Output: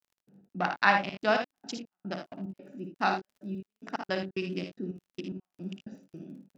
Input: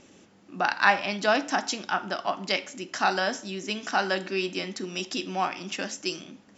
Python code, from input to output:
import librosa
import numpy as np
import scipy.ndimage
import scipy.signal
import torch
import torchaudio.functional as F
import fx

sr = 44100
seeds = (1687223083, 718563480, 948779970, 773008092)

y = fx.wiener(x, sr, points=41)
y = scipy.signal.sosfilt(scipy.signal.butter(2, 5700.0, 'lowpass', fs=sr, output='sos'), y)
y = fx.low_shelf_res(y, sr, hz=110.0, db=-10.5, q=3.0)
y = fx.step_gate(y, sr, bpm=110, pattern='..x.x.xx.x..x', floor_db=-60.0, edge_ms=4.5)
y = fx.dmg_crackle(y, sr, seeds[0], per_s=14.0, level_db=-49.0)
y = fx.room_early_taps(y, sr, ms=(56, 77), db=(-7.0, -9.0))
y = y * librosa.db_to_amplitude(-3.0)